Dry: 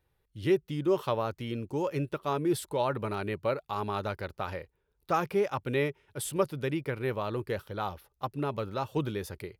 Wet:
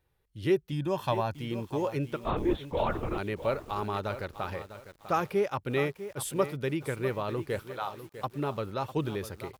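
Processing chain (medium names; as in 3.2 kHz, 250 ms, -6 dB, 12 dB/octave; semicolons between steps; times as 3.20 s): 0.72–1.36 s: comb 1.2 ms, depth 67%; 2.23–3.18 s: LPC vocoder at 8 kHz whisper; 7.63–8.24 s: high-pass 570 Hz; bit-crushed delay 650 ms, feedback 35%, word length 8-bit, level -12 dB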